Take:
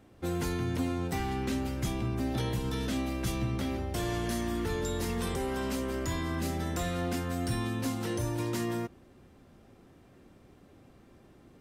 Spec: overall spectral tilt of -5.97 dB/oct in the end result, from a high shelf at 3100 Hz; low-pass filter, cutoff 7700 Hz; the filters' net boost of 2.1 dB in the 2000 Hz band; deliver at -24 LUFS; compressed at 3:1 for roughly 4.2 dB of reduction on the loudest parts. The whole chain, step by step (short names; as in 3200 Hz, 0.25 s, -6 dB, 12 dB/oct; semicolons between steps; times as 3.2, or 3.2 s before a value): LPF 7700 Hz; bell 2000 Hz +5 dB; high shelf 3100 Hz -7.5 dB; compressor 3:1, threshold -33 dBFS; gain +12.5 dB